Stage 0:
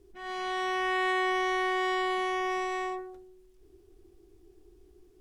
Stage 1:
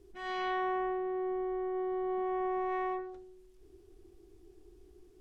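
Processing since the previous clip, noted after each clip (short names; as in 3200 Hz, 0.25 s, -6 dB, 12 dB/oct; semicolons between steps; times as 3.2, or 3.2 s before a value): treble ducked by the level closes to 430 Hz, closed at -24.5 dBFS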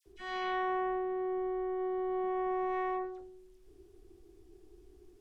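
dispersion lows, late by 61 ms, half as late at 1600 Hz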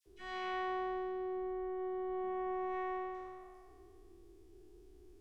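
spectral trails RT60 1.97 s; gain -5 dB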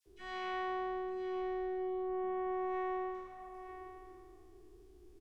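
echo 0.913 s -10.5 dB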